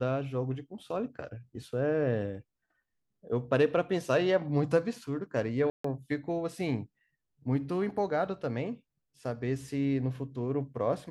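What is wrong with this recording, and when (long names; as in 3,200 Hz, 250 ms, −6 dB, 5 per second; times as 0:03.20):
0:05.70–0:05.84: drop-out 144 ms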